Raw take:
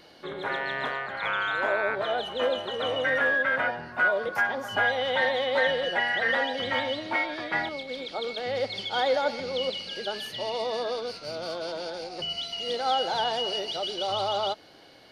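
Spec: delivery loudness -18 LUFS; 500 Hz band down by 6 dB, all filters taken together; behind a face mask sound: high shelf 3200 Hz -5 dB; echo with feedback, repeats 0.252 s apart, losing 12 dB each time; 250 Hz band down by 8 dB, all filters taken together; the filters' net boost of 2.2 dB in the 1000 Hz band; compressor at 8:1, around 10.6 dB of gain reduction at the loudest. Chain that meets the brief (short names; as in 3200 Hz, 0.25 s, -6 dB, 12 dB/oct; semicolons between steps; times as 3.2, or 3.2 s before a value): bell 250 Hz -8 dB; bell 500 Hz -7.5 dB; bell 1000 Hz +7 dB; compressor 8:1, threshold -28 dBFS; high shelf 3200 Hz -5 dB; feedback echo 0.252 s, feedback 25%, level -12 dB; gain +15 dB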